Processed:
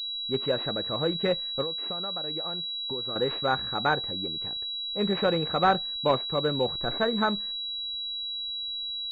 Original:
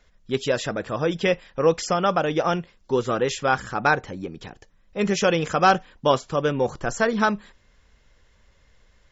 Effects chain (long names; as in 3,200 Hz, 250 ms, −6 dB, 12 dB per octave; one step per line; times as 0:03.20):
0:01.62–0:03.16: downward compressor 5 to 1, threshold −31 dBFS, peak gain reduction 16 dB
switching amplifier with a slow clock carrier 3,900 Hz
level −4.5 dB